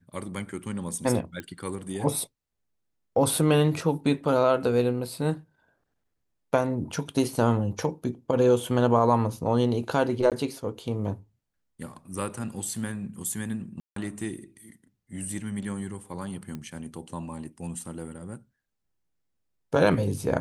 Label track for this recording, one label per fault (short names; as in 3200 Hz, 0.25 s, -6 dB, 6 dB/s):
1.400000	1.400000	pop -22 dBFS
10.300000	10.320000	gap 17 ms
13.800000	13.960000	gap 0.163 s
16.550000	16.550000	pop -23 dBFS